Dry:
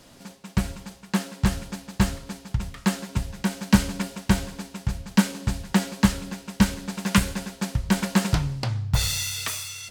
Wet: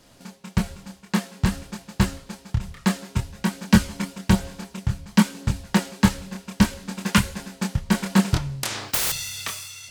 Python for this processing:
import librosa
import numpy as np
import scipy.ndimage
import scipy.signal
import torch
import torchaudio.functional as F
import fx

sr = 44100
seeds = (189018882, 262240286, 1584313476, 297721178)

y = fx.transient(x, sr, attack_db=6, sustain_db=0)
y = fx.chorus_voices(y, sr, voices=2, hz=0.55, base_ms=25, depth_ms=2.7, mix_pct=40)
y = fx.spectral_comp(y, sr, ratio=10.0, at=(8.63, 9.12))